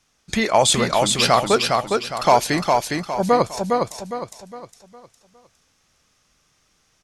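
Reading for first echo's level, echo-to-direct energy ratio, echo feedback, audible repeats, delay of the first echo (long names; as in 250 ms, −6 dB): −3.5 dB, −3.0 dB, 38%, 4, 409 ms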